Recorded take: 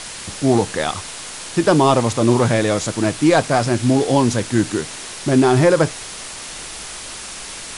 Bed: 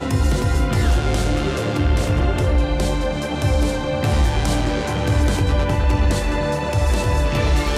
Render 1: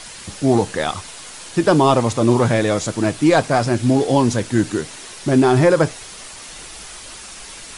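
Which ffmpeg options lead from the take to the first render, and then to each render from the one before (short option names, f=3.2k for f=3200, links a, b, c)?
-af "afftdn=nr=6:nf=-33"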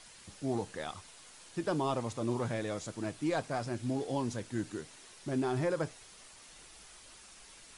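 -af "volume=-18.5dB"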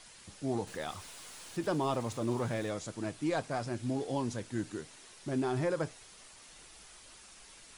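-filter_complex "[0:a]asettb=1/sr,asplit=3[a][b][c];[a]atrim=end=0.674[d];[b]atrim=start=0.67:end=2.71,asetpts=PTS-STARTPTS,afade=t=in:d=0.004:c=qsin,afade=t=out:st=2.036:d=0.004:c=qsin,aeval=exprs='val(0)+0.5*0.00355*sgn(val(0))':c=same[e];[c]atrim=start=2.706[f];[d][e]acrossfade=d=0.004:c1=hsin:c2=qsin[g];[g][f]acrossfade=d=0.004:c1=qsin:c2=hsin"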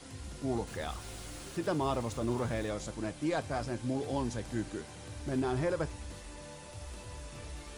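-filter_complex "[1:a]volume=-27.5dB[a];[0:a][a]amix=inputs=2:normalize=0"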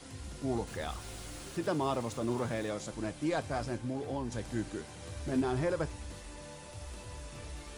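-filter_complex "[0:a]asettb=1/sr,asplit=3[a][b][c];[a]atrim=end=1.684[d];[b]atrim=start=1.68:end=2.93,asetpts=PTS-STARTPTS,afade=t=in:d=0.004:c=qsin,afade=t=out:st=1.246:d=0.004:c=qsin,highpass=110[e];[c]atrim=start=2.926[f];[d][e]acrossfade=d=0.004:c1=hsin:c2=qsin[g];[g][f]acrossfade=d=0.004:c1=qsin:c2=hsin,asettb=1/sr,asplit=3[h][i][j];[h]atrim=end=3.764[k];[i]atrim=start=3.76:end=4.32,asetpts=PTS-STARTPTS,afade=t=in:d=0.004:c=qsin,afade=t=out:st=0.556:d=0.004:c=qsin,acrossover=split=950|2300[l][m][n];[l]acompressor=threshold=-33dB:ratio=4[o];[m]acompressor=threshold=-46dB:ratio=4[p];[n]acompressor=threshold=-59dB:ratio=4[q];[o][p][q]amix=inputs=3:normalize=0[r];[j]atrim=start=4.316[s];[k][r]acrossfade=d=0.004:c1=hsin:c2=qsin[t];[t][s]acrossfade=d=0.004:c1=qsin:c2=hsin,asettb=1/sr,asplit=3[u][v][w];[u]atrim=end=5.014[x];[v]atrim=start=5.01:end=5.41,asetpts=PTS-STARTPTS,afade=t=in:d=0.004:c=qsin,afade=t=out:st=0.396:d=0.004:c=qsin,asplit=2[y][z];[z]adelay=12,volume=-5dB[aa];[y][aa]amix=inputs=2:normalize=0,atrim=end_sample=17640[ab];[w]atrim=start=5.406[ac];[x][ab]acrossfade=d=0.004:c1=hsin:c2=qsin[ad];[ad][ac]acrossfade=d=0.004:c1=qsin:c2=hsin"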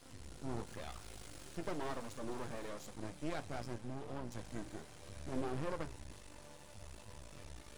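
-af "aeval=exprs='max(val(0),0)':c=same,flanger=delay=7.5:depth=7:regen=-75:speed=1.4:shape=triangular"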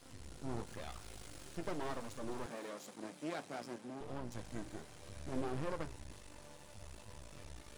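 -filter_complex "[0:a]asettb=1/sr,asplit=3[a][b][c];[a]atrim=end=2.464[d];[b]atrim=start=2.46:end=4.01,asetpts=PTS-STARTPTS,afade=t=in:d=0.004:c=qsin,afade=t=out:st=1.546:d=0.004:c=qsin,highpass=f=180:w=0.5412,highpass=f=180:w=1.3066[e];[c]atrim=start=4.006[f];[d][e]acrossfade=d=0.004:c1=hsin:c2=qsin[g];[g][f]acrossfade=d=0.004:c1=qsin:c2=hsin"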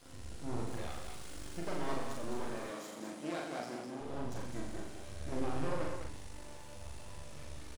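-filter_complex "[0:a]asplit=2[a][b];[b]adelay=41,volume=-2.5dB[c];[a][c]amix=inputs=2:normalize=0,aecho=1:1:84.55|204.1:0.501|0.501"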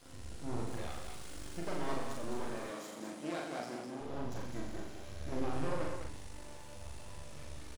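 -filter_complex "[0:a]asettb=1/sr,asplit=3[a][b][c];[a]atrim=end=4.064[d];[b]atrim=start=4.06:end=5.53,asetpts=PTS-STARTPTS,afade=t=in:d=0.004:c=qsin,afade=t=out:st=1.466:d=0.004:c=qsin,equalizer=f=8.7k:t=o:w=0.2:g=-11.5[e];[c]atrim=start=5.526[f];[d][e]acrossfade=d=0.004:c1=hsin:c2=qsin[g];[g][f]acrossfade=d=0.004:c1=qsin:c2=hsin"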